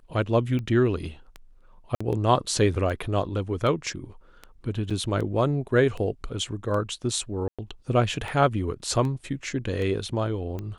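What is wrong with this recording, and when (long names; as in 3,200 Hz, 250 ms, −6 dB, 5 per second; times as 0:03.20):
scratch tick 78 rpm −22 dBFS
0:01.95–0:02.00: drop-out 55 ms
0:04.90–0:04.91: drop-out 5.9 ms
0:07.48–0:07.59: drop-out 106 ms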